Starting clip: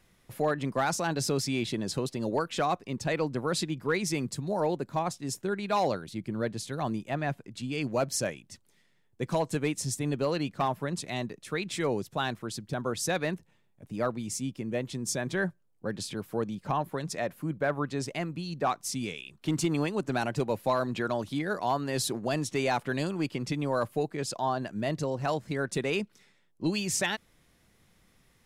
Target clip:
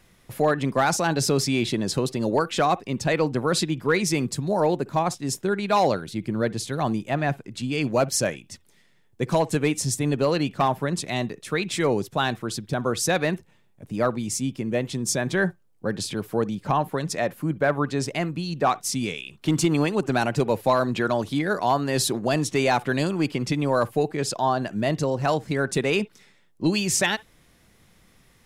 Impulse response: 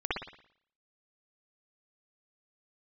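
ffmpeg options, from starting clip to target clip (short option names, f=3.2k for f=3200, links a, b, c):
-filter_complex "[0:a]asplit=2[a][b];[1:a]atrim=start_sample=2205,atrim=end_sample=3969[c];[b][c]afir=irnorm=-1:irlink=0,volume=-28.5dB[d];[a][d]amix=inputs=2:normalize=0,volume=6.5dB"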